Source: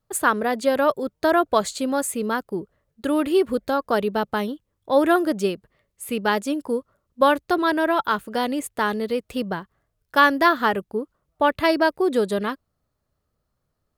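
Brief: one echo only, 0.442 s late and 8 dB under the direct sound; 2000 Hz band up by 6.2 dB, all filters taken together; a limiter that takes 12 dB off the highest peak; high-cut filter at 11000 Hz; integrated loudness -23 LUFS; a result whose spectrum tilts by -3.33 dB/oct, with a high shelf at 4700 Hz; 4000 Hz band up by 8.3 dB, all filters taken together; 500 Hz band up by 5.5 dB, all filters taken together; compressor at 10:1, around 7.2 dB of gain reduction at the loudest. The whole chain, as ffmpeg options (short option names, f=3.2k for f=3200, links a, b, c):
-af "lowpass=11k,equalizer=f=500:t=o:g=6.5,equalizer=f=2k:t=o:g=6,equalizer=f=4k:t=o:g=6.5,highshelf=f=4.7k:g=4,acompressor=threshold=-13dB:ratio=10,alimiter=limit=-14.5dB:level=0:latency=1,aecho=1:1:442:0.398,volume=1.5dB"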